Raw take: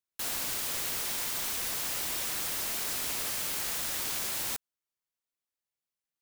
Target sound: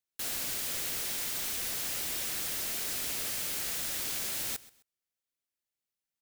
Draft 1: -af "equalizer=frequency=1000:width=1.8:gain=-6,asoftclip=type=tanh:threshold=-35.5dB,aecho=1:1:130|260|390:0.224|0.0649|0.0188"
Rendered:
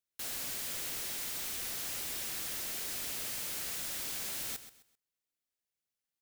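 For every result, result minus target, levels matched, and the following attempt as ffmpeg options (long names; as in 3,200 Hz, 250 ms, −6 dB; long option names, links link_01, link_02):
soft clipping: distortion +11 dB; echo-to-direct +7 dB
-af "equalizer=frequency=1000:width=1.8:gain=-6,asoftclip=type=tanh:threshold=-25.5dB,aecho=1:1:130|260|390:0.224|0.0649|0.0188"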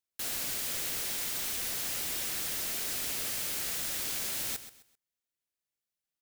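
echo-to-direct +7 dB
-af "equalizer=frequency=1000:width=1.8:gain=-6,asoftclip=type=tanh:threshold=-25.5dB,aecho=1:1:130|260:0.1|0.029"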